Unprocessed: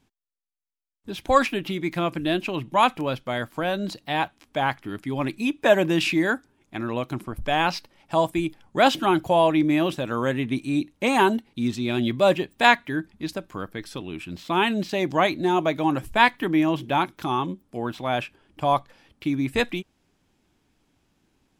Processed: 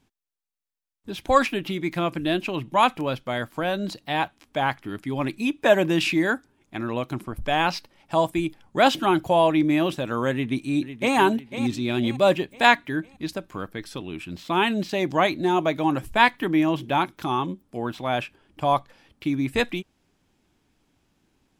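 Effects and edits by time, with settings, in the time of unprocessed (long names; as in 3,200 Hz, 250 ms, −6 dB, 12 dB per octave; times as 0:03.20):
0:10.32–0:11.16: delay throw 500 ms, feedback 45%, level −11 dB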